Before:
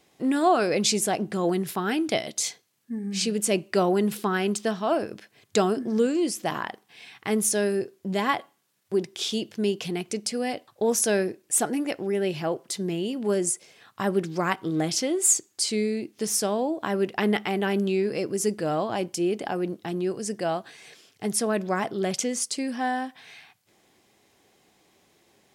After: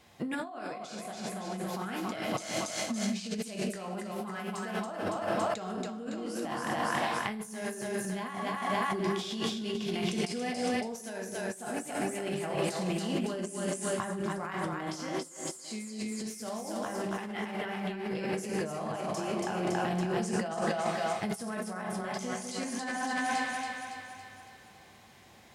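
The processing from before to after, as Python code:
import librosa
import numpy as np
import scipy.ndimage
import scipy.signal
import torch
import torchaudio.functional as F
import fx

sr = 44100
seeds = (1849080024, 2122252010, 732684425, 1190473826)

y = fx.peak_eq(x, sr, hz=380.0, db=-10.0, octaves=1.2)
y = fx.echo_split(y, sr, split_hz=480.0, low_ms=190, high_ms=280, feedback_pct=52, wet_db=-3.5)
y = fx.rev_plate(y, sr, seeds[0], rt60_s=0.67, hf_ratio=0.85, predelay_ms=0, drr_db=1.5)
y = fx.over_compress(y, sr, threshold_db=-34.0, ratio=-1.0)
y = fx.high_shelf(y, sr, hz=2900.0, db=-8.5)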